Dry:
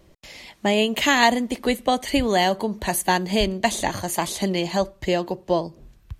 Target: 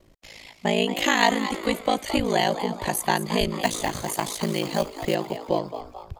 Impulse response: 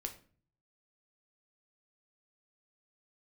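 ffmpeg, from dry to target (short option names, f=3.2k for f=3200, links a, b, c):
-filter_complex "[0:a]asettb=1/sr,asplit=3[a][b][c];[a]atrim=end=3.634[d];[b]atrim=start=3.63:end=5.15,asetpts=PTS-STARTPTS,afade=t=in:d=0.004:c=qsin,afade=t=out:st=1.516:d=0.004:c=qsin,acrusher=bits=4:mode=log:mix=0:aa=0.000001[e];[c]atrim=start=5.146[f];[d][e]acrossfade=d=0.004:c1=hsin:c2=qsin[g];[g][f]acrossfade=d=0.004:c1=qsin:c2=hsin,aeval=exprs='val(0)*sin(2*PI*27*n/s)':c=same,asplit=6[h][i][j][k][l][m];[i]adelay=220,afreqshift=110,volume=-11.5dB[n];[j]adelay=440,afreqshift=220,volume=-17.7dB[o];[k]adelay=660,afreqshift=330,volume=-23.9dB[p];[l]adelay=880,afreqshift=440,volume=-30.1dB[q];[m]adelay=1100,afreqshift=550,volume=-36.3dB[r];[h][n][o][p][q][r]amix=inputs=6:normalize=0"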